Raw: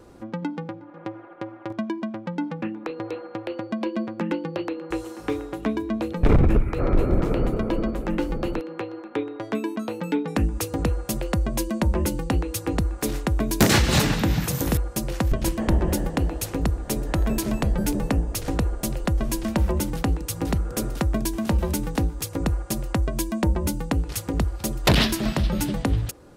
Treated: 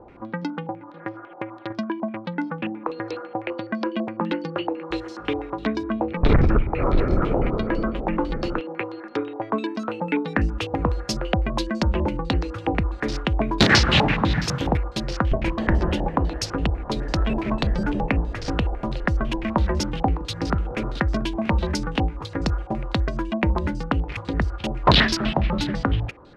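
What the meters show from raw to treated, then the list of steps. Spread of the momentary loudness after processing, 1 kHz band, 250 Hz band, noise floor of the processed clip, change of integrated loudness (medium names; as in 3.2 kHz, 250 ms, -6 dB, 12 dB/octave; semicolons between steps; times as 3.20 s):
10 LU, +5.0 dB, +0.5 dB, -40 dBFS, +1.0 dB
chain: step-sequenced low-pass 12 Hz 820–5100 Hz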